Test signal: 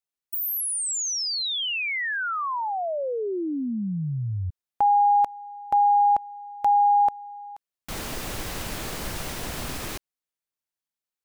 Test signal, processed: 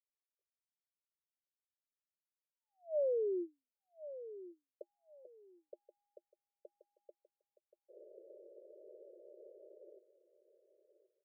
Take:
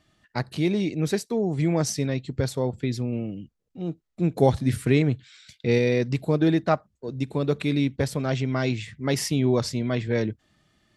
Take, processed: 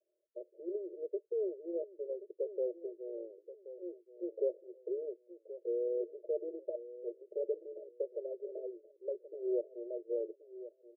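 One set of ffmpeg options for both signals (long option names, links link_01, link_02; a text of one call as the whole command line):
ffmpeg -i in.wav -filter_complex "[0:a]aderivative,acompressor=threshold=-48dB:ratio=3:release=32,asuperpass=centerf=460:order=20:qfactor=1.7,asplit=2[link_01][link_02];[link_02]aecho=0:1:1078|2156:0.2|0.0439[link_03];[link_01][link_03]amix=inputs=2:normalize=0,volume=18dB" out.wav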